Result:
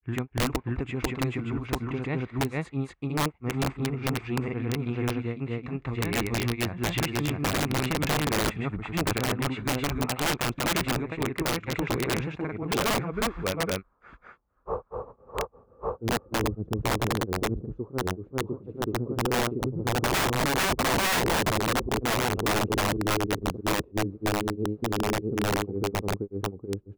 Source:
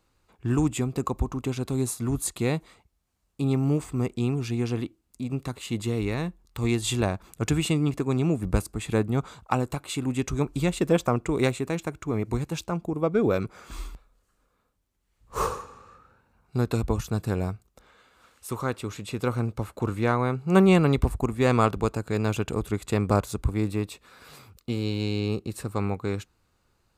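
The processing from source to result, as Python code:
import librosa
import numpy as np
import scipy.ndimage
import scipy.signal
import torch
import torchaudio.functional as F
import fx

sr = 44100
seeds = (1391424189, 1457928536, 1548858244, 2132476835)

y = fx.filter_sweep_lowpass(x, sr, from_hz=2100.0, to_hz=380.0, start_s=13.34, end_s=16.66, q=2.3)
y = fx.granulator(y, sr, seeds[0], grain_ms=186.0, per_s=20.0, spray_ms=730.0, spread_st=0)
y = (np.mod(10.0 ** (22.0 / 20.0) * y + 1.0, 2.0) - 1.0) / 10.0 ** (22.0 / 20.0)
y = y * librosa.db_to_amplitude(2.5)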